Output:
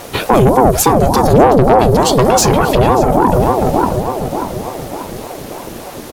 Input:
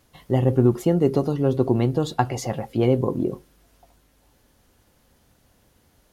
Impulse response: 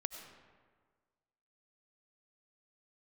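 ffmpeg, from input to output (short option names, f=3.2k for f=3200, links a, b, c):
-filter_complex "[0:a]acrossover=split=4800[a][b];[a]acompressor=threshold=-31dB:ratio=6[c];[c][b]amix=inputs=2:normalize=0,asettb=1/sr,asplit=3[d][e][f];[d]atrim=end=1.334[g];[e]atrim=start=1.33:end=1.79,asetpts=PTS-STARTPTS,afade=t=in:d=0.004:c=qsin,afade=t=out:st=0.456:d=0.004:c=qsin,equalizer=f=79:w=0.31:g=14.5[h];[f]atrim=start=1.786[i];[g][h]acrossfade=d=0.004:c1=hsin:c2=qsin[j];[j][i]acrossfade=d=0.004:c1=qsin:c2=hsin,asoftclip=type=tanh:threshold=-31dB,asplit=2[k][l];[l]adelay=587,lowpass=f=880:p=1,volume=-6dB,asplit=2[m][n];[n]adelay=587,lowpass=f=880:p=1,volume=0.51,asplit=2[o][p];[p]adelay=587,lowpass=f=880:p=1,volume=0.51,asplit=2[q][r];[r]adelay=587,lowpass=f=880:p=1,volume=0.51,asplit=2[s][t];[t]adelay=587,lowpass=f=880:p=1,volume=0.51,asplit=2[u][v];[v]adelay=587,lowpass=f=880:p=1,volume=0.51[w];[m][o][q][s][u][w]amix=inputs=6:normalize=0[x];[k][x]amix=inputs=2:normalize=0,alimiter=level_in=33dB:limit=-1dB:release=50:level=0:latency=1,aeval=exprs='val(0)*sin(2*PI*450*n/s+450*0.45/3.4*sin(2*PI*3.4*n/s))':c=same"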